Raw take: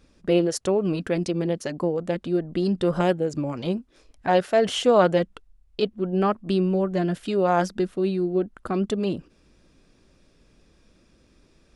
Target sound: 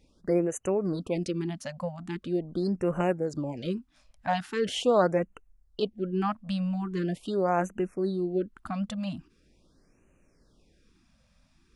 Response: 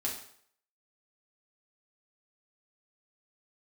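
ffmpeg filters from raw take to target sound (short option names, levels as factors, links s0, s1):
-af "afftfilt=real='re*(1-between(b*sr/1024,350*pow(4300/350,0.5+0.5*sin(2*PI*0.42*pts/sr))/1.41,350*pow(4300/350,0.5+0.5*sin(2*PI*0.42*pts/sr))*1.41))':imag='im*(1-between(b*sr/1024,350*pow(4300/350,0.5+0.5*sin(2*PI*0.42*pts/sr))/1.41,350*pow(4300/350,0.5+0.5*sin(2*PI*0.42*pts/sr))*1.41))':win_size=1024:overlap=0.75,volume=0.562"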